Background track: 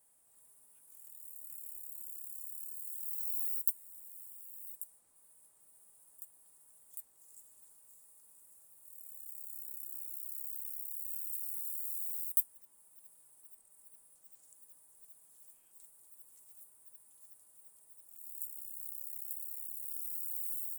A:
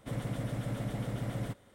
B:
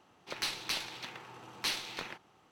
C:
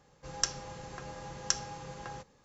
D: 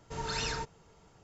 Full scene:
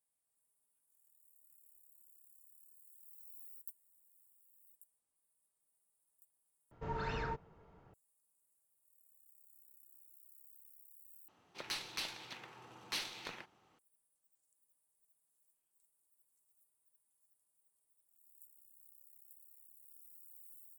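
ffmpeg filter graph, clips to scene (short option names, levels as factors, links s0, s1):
-filter_complex "[0:a]volume=0.119[s0];[4:a]lowpass=1800[s1];[s0]asplit=3[s2][s3][s4];[s2]atrim=end=6.714[s5];[s1]atrim=end=1.23,asetpts=PTS-STARTPTS,volume=0.794[s6];[s3]atrim=start=7.936:end=11.284[s7];[2:a]atrim=end=2.51,asetpts=PTS-STARTPTS,volume=0.501[s8];[s4]atrim=start=13.786[s9];[s5][s6]acrossfade=d=0.004:c1=hsin:c2=hsin[s10];[s10][s7]acrossfade=d=0.004:c1=hsin:c2=hsin[s11];[s11][s8]acrossfade=d=0.004:c1=hsin:c2=hsin[s12];[s12][s9]acrossfade=d=0.004:c1=hsin:c2=hsin"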